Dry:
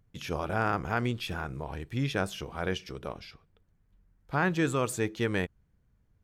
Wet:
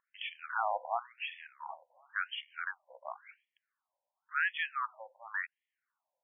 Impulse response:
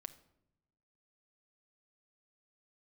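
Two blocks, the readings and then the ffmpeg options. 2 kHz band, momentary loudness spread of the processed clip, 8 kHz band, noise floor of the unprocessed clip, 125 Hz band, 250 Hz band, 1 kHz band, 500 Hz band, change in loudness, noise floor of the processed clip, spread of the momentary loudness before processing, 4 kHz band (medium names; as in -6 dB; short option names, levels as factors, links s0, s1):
-1.0 dB, 15 LU, under -35 dB, -69 dBFS, under -40 dB, under -40 dB, -2.5 dB, -13.5 dB, -6.0 dB, under -85 dBFS, 11 LU, -4.5 dB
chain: -af "bass=f=250:g=13,treble=f=4000:g=9,afftfilt=real='re*between(b*sr/1024,710*pow(2500/710,0.5+0.5*sin(2*PI*0.93*pts/sr))/1.41,710*pow(2500/710,0.5+0.5*sin(2*PI*0.93*pts/sr))*1.41)':imag='im*between(b*sr/1024,710*pow(2500/710,0.5+0.5*sin(2*PI*0.93*pts/sr))/1.41,710*pow(2500/710,0.5+0.5*sin(2*PI*0.93*pts/sr))*1.41)':win_size=1024:overlap=0.75,volume=1.12"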